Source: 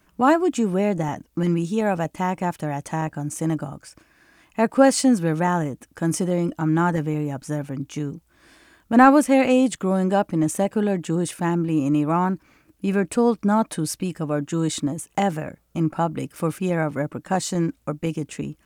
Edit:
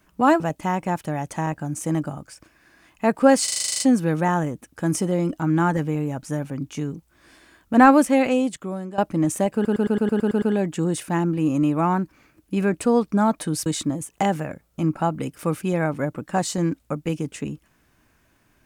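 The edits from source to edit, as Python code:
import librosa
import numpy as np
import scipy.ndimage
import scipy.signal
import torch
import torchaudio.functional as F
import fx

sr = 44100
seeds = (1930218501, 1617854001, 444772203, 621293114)

y = fx.edit(x, sr, fx.cut(start_s=0.4, length_s=1.55),
    fx.stutter(start_s=4.99, slice_s=0.04, count=10),
    fx.fade_out_to(start_s=9.2, length_s=0.97, floor_db=-16.0),
    fx.stutter(start_s=10.73, slice_s=0.11, count=9),
    fx.cut(start_s=13.97, length_s=0.66), tone=tone)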